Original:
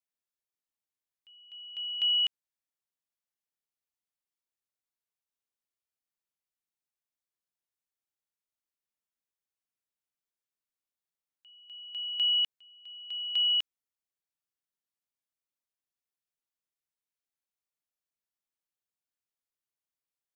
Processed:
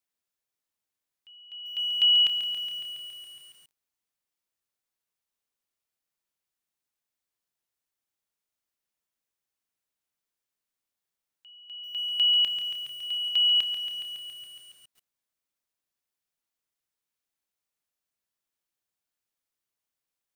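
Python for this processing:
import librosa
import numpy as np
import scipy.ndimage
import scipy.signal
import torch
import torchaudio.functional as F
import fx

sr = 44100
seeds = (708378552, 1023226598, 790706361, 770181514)

y = fx.high_shelf(x, sr, hz=fx.line((1.64, 2200.0), (2.22, 2600.0)), db=3.5, at=(1.64, 2.22), fade=0.02)
y = fx.echo_crushed(y, sr, ms=139, feedback_pct=80, bits=9, wet_db=-9)
y = y * librosa.db_to_amplitude(5.0)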